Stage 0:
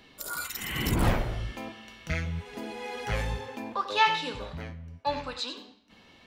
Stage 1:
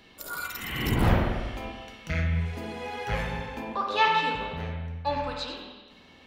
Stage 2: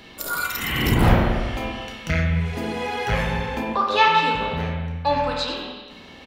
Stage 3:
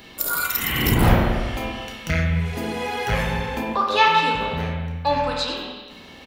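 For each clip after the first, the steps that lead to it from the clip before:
reverb RT60 1.2 s, pre-delay 48 ms, DRR 1.5 dB; dynamic EQ 8200 Hz, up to -6 dB, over -51 dBFS, Q 0.83
in parallel at -1.5 dB: compressor, threshold -34 dBFS, peak gain reduction 16.5 dB; on the sum: doubler 31 ms -10.5 dB; gain +4.5 dB
high shelf 9500 Hz +10 dB

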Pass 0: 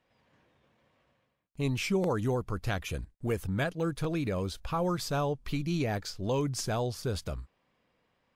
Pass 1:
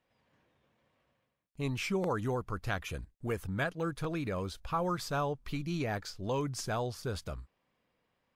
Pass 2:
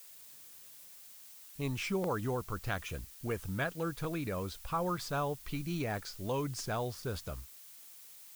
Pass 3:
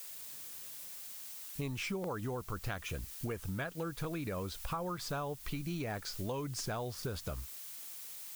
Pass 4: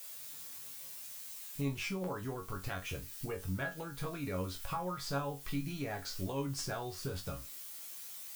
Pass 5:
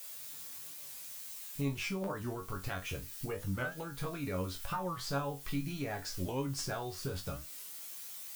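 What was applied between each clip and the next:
dynamic EQ 1300 Hz, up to +6 dB, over -46 dBFS, Q 0.94; gain -4.5 dB
added noise blue -52 dBFS; gain -1.5 dB
compressor, threshold -42 dBFS, peak gain reduction 12.5 dB; gain +6.5 dB
resonator bank F#2 fifth, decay 0.22 s; gain +9.5 dB
record warp 45 rpm, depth 160 cents; gain +1 dB

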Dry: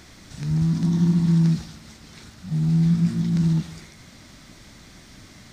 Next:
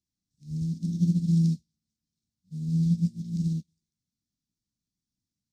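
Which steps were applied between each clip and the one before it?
Chebyshev band-stop 220–5200 Hz, order 2; low shelf 91 Hz -5.5 dB; upward expander 2.5:1, over -42 dBFS; gain -1.5 dB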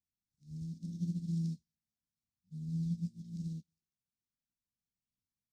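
flange 0.39 Hz, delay 0.2 ms, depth 2.5 ms, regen +74%; gain -7 dB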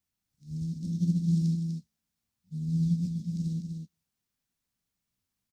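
echo 0.248 s -6 dB; gain +8.5 dB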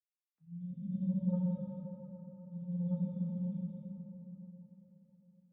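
sine-wave speech; soft clip -20.5 dBFS, distortion -17 dB; reverb RT60 4.4 s, pre-delay 5 ms, DRR -5.5 dB; gain -5.5 dB

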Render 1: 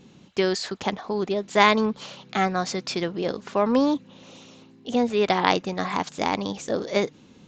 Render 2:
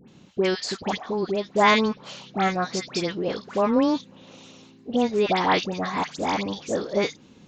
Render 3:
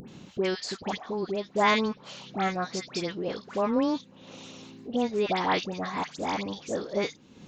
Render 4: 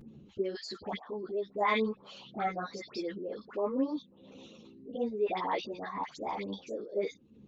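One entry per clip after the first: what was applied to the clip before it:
dispersion highs, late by 83 ms, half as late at 1500 Hz
upward compressor, threshold -31 dBFS; gain -5 dB
formant sharpening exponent 2; ensemble effect; gain -3 dB

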